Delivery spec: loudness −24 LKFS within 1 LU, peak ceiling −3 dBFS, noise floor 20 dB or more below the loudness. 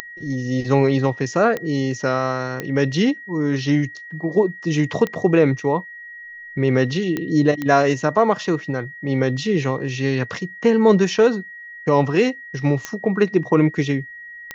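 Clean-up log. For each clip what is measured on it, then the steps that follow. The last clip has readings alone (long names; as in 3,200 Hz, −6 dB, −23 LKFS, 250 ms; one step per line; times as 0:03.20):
number of clicks 8; interfering tone 1,900 Hz; level of the tone −35 dBFS; integrated loudness −20.0 LKFS; sample peak −3.0 dBFS; target loudness −24.0 LKFS
→ click removal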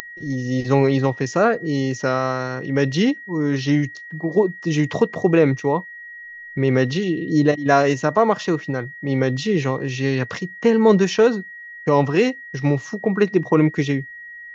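number of clicks 1; interfering tone 1,900 Hz; level of the tone −35 dBFS
→ notch filter 1,900 Hz, Q 30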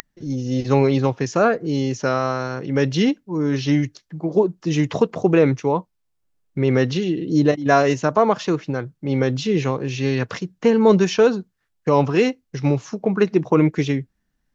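interfering tone none found; integrated loudness −20.0 LKFS; sample peak −3.0 dBFS; target loudness −24.0 LKFS
→ level −4 dB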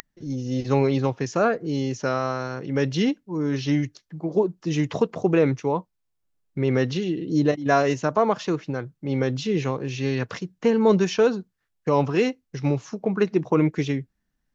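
integrated loudness −24.0 LKFS; sample peak −7.0 dBFS; background noise floor −76 dBFS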